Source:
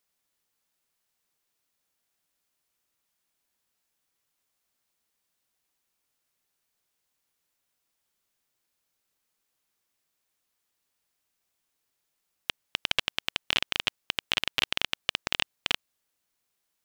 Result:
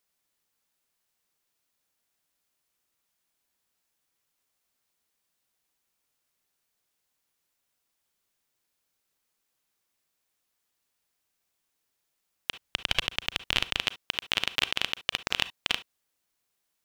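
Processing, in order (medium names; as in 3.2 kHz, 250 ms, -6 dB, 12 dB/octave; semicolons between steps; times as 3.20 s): 12.61–13.80 s: bass shelf 100 Hz +12 dB; reverberation, pre-delay 33 ms, DRR 14.5 dB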